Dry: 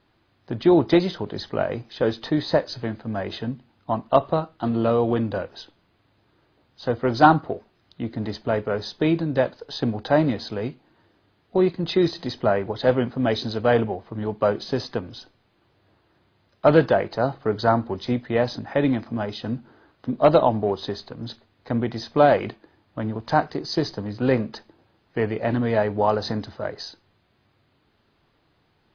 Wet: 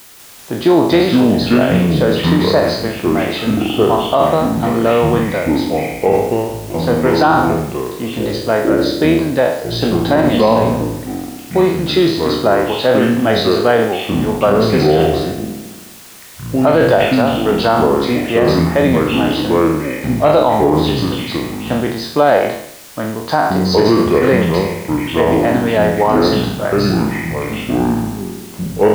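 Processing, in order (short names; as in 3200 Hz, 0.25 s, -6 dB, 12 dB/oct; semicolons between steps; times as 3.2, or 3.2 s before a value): spectral trails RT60 0.66 s; HPF 200 Hz 6 dB/oct; added noise white -48 dBFS; echoes that change speed 0.196 s, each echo -6 st, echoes 2; maximiser +8.5 dB; gain -1 dB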